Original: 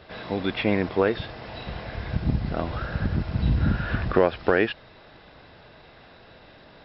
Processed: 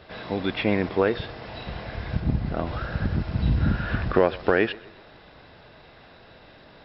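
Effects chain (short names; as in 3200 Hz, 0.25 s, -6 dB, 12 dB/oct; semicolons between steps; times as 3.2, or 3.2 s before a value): 2.2–2.67 high shelf 3700 Hz -6.5 dB; tape echo 0.127 s, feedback 50%, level -20 dB, low-pass 3900 Hz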